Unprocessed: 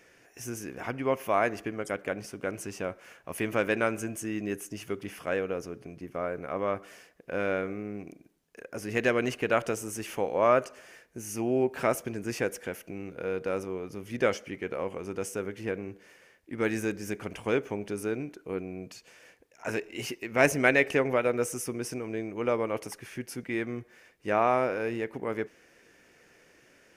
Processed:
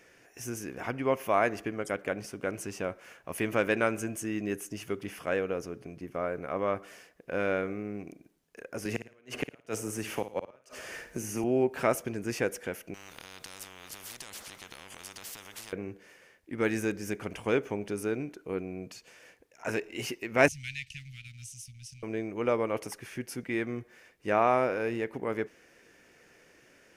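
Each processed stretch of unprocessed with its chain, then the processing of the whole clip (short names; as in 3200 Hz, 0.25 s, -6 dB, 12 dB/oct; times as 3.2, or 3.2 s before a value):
8.85–11.44 flipped gate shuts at -16 dBFS, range -40 dB + flutter echo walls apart 9.5 m, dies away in 0.31 s + three-band squash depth 70%
12.94–15.73 compressor 2.5:1, threshold -39 dBFS + spectral compressor 10:1
20.48–22.03 G.711 law mismatch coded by A + inverse Chebyshev band-stop 410–900 Hz, stop band 80 dB + air absorption 55 m
whole clip: dry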